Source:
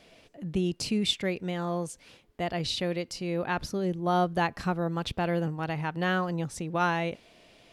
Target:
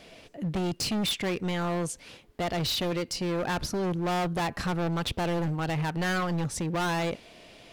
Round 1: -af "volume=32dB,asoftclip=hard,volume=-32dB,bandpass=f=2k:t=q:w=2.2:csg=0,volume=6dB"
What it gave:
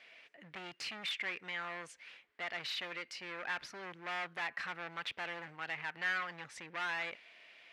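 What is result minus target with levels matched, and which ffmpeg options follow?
2000 Hz band +8.0 dB
-af "volume=32dB,asoftclip=hard,volume=-32dB,volume=6dB"

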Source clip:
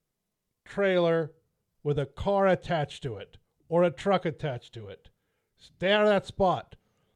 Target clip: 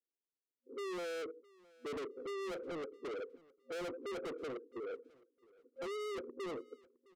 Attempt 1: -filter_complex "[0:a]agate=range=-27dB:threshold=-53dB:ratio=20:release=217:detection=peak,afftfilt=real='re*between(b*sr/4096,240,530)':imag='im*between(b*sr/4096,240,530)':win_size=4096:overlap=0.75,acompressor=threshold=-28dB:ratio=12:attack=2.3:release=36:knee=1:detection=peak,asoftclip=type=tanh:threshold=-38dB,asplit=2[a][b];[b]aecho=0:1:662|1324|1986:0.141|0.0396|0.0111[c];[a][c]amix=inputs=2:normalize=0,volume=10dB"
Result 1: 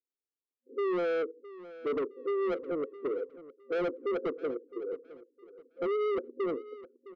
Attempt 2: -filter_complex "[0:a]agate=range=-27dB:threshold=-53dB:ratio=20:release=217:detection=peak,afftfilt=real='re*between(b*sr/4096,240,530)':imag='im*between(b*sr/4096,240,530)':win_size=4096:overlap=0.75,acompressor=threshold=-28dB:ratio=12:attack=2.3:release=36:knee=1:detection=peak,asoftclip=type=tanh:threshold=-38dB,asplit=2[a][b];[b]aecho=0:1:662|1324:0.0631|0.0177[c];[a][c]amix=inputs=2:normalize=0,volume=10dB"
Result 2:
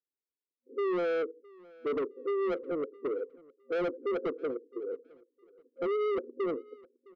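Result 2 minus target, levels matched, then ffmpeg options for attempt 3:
soft clip: distortion -5 dB
-filter_complex "[0:a]agate=range=-27dB:threshold=-53dB:ratio=20:release=217:detection=peak,afftfilt=real='re*between(b*sr/4096,240,530)':imag='im*between(b*sr/4096,240,530)':win_size=4096:overlap=0.75,acompressor=threshold=-28dB:ratio=12:attack=2.3:release=36:knee=1:detection=peak,asoftclip=type=tanh:threshold=-50dB,asplit=2[a][b];[b]aecho=0:1:662|1324:0.0631|0.0177[c];[a][c]amix=inputs=2:normalize=0,volume=10dB"

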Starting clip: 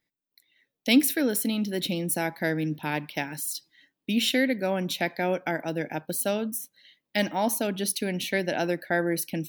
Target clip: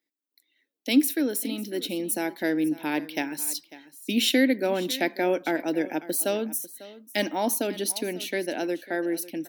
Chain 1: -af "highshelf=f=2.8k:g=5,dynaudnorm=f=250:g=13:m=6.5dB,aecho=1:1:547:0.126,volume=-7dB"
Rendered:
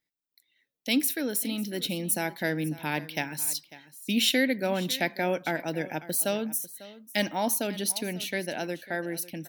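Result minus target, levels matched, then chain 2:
250 Hz band -2.5 dB
-af "highpass=f=300:t=q:w=2.7,highshelf=f=2.8k:g=5,dynaudnorm=f=250:g=13:m=6.5dB,aecho=1:1:547:0.126,volume=-7dB"

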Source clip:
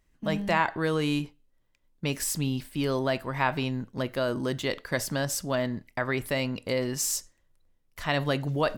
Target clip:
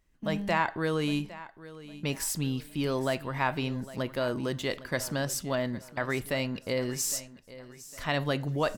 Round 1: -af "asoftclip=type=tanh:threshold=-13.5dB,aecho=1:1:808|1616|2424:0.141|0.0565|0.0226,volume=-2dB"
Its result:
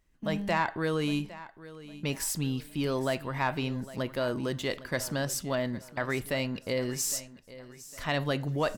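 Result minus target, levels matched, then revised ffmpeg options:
soft clip: distortion +12 dB
-af "asoftclip=type=tanh:threshold=-6.5dB,aecho=1:1:808|1616|2424:0.141|0.0565|0.0226,volume=-2dB"

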